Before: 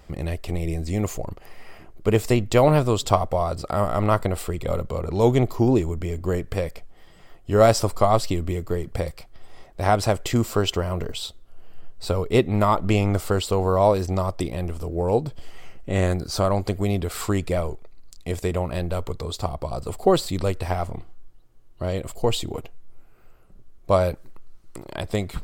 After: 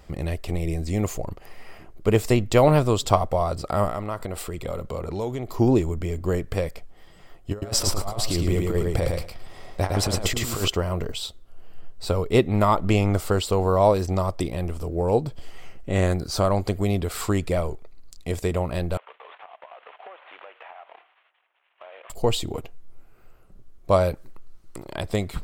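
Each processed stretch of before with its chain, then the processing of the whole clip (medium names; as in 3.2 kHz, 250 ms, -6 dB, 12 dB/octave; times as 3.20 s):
3.89–5.54 s: compression, threshold -23 dBFS + bass shelf 210 Hz -4.5 dB
7.51–10.68 s: compressor with a negative ratio -24 dBFS, ratio -0.5 + feedback delay 109 ms, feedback 16%, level -3 dB
18.97–22.10 s: CVSD coder 16 kbps + high-pass 670 Hz 24 dB/octave + compression 10:1, threshold -39 dBFS
whole clip: none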